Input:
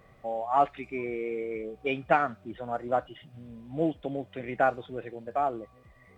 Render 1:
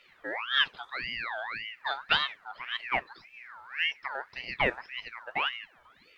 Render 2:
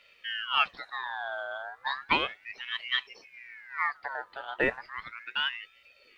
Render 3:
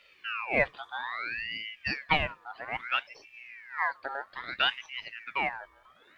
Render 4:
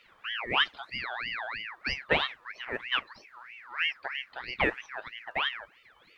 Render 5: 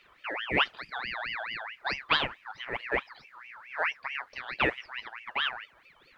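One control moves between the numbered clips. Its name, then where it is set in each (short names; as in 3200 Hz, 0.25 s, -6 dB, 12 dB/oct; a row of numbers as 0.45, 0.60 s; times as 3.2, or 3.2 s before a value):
ring modulator with a swept carrier, at: 1.8, 0.34, 0.61, 3.1, 4.6 Hz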